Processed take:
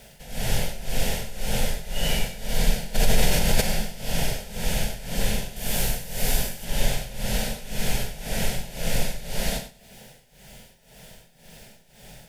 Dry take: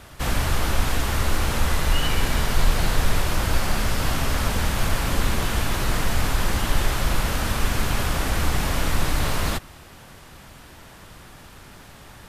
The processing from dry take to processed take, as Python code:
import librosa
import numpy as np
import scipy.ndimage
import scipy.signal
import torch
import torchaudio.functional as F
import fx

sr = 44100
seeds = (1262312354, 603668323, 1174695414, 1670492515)

p1 = fx.notch(x, sr, hz=4000.0, q=21.0)
p2 = fx.dmg_noise_colour(p1, sr, seeds[0], colour='white', level_db=-60.0)
p3 = fx.fixed_phaser(p2, sr, hz=310.0, stages=6)
p4 = fx.echo_feedback(p3, sr, ms=96, feedback_pct=41, wet_db=-4.5)
p5 = p4 * (1.0 - 0.84 / 2.0 + 0.84 / 2.0 * np.cos(2.0 * np.pi * 1.9 * (np.arange(len(p4)) / sr)))
p6 = fx.high_shelf(p5, sr, hz=9300.0, db=10.0, at=(5.56, 6.65))
p7 = p6 + fx.room_early_taps(p6, sr, ms=(24, 42), db=(-9.5, -8.0), dry=0)
y = fx.env_flatten(p7, sr, amount_pct=70, at=(2.94, 3.6), fade=0.02)